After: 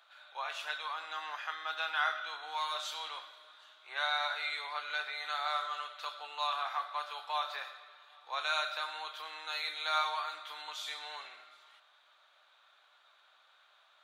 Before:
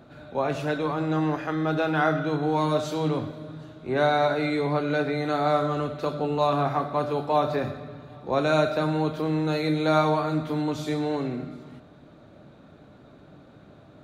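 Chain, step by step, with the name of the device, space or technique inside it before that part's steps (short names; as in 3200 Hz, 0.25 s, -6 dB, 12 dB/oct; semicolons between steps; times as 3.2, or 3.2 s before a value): headphones lying on a table (HPF 1000 Hz 24 dB/oct; bell 3300 Hz +8 dB 0.5 oct); gain -4.5 dB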